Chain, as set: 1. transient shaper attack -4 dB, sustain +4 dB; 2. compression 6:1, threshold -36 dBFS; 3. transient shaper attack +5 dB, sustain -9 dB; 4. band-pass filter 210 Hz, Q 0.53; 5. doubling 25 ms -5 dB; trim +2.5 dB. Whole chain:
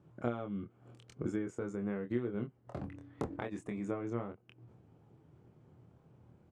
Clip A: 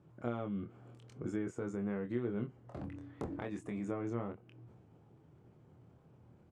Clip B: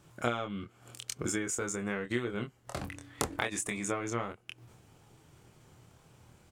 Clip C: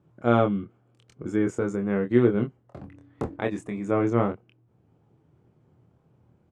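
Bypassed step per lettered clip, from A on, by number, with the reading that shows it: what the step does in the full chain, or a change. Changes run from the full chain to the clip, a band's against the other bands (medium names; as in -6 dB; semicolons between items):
3, crest factor change -3.0 dB; 4, 8 kHz band +20.5 dB; 2, mean gain reduction 9.5 dB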